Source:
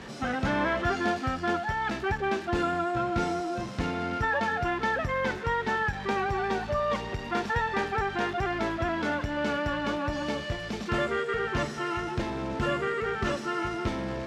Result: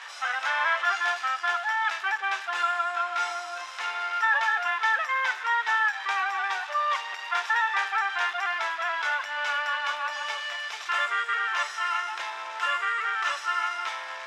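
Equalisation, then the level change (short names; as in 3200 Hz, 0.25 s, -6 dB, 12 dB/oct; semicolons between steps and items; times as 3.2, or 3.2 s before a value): HPF 960 Hz 24 dB/oct; high shelf 7500 Hz -5.5 dB; notch 4400 Hz, Q 12; +6.5 dB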